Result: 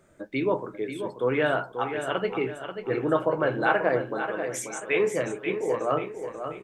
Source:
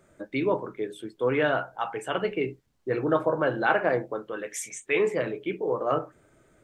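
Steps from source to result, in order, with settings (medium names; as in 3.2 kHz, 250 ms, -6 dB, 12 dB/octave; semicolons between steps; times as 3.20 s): feedback delay 536 ms, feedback 41%, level -8.5 dB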